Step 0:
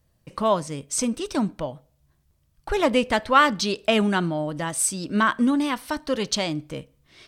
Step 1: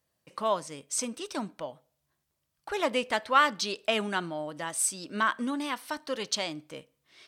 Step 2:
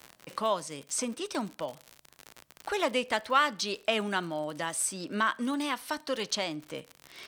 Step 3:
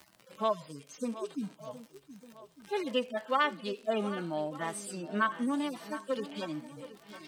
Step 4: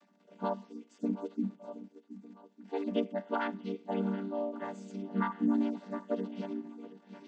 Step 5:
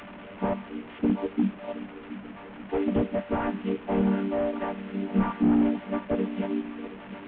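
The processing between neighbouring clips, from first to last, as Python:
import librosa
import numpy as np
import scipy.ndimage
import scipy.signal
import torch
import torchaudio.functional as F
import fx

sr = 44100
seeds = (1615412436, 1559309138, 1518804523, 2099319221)

y1 = fx.highpass(x, sr, hz=530.0, slope=6)
y1 = y1 * librosa.db_to_amplitude(-4.5)
y2 = fx.dmg_crackle(y1, sr, seeds[0], per_s=69.0, level_db=-39.0)
y2 = fx.band_squash(y2, sr, depth_pct=40)
y3 = fx.hpss_only(y2, sr, part='harmonic')
y3 = fx.echo_swing(y3, sr, ms=1203, ratio=1.5, feedback_pct=32, wet_db=-15.0)
y4 = fx.chord_vocoder(y3, sr, chord='minor triad', root=55)
y5 = fx.delta_mod(y4, sr, bps=16000, step_db=-46.0)
y5 = y5 * librosa.db_to_amplitude(9.0)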